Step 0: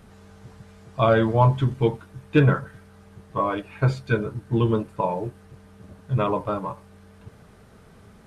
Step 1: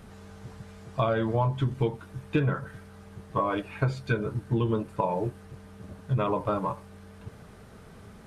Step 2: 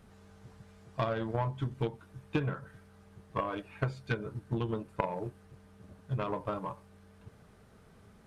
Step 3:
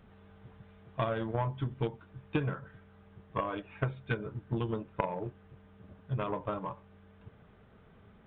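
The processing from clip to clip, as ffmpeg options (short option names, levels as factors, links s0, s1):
-af "acompressor=threshold=0.0631:ratio=6,volume=1.19"
-af "aeval=exprs='0.282*(cos(1*acos(clip(val(0)/0.282,-1,1)))-cos(1*PI/2))+0.0631*(cos(3*acos(clip(val(0)/0.282,-1,1)))-cos(3*PI/2))':c=same"
-af "aresample=8000,aresample=44100"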